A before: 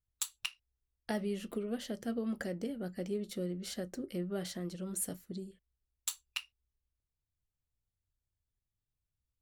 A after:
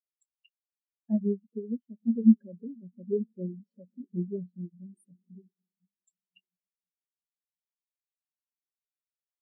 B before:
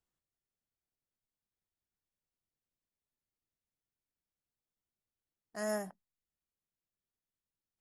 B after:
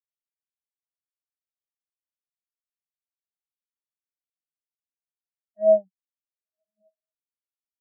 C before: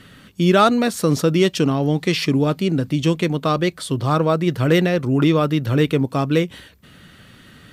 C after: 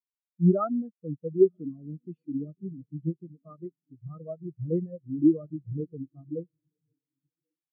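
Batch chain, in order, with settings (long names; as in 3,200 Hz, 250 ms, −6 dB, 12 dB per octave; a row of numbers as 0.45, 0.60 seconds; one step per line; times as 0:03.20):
feedback delay with all-pass diffusion 1,063 ms, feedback 43%, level −11 dB
every bin expanded away from the loudest bin 4 to 1
normalise the peak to −9 dBFS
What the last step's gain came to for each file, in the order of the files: +10.0, +16.0, −6.0 decibels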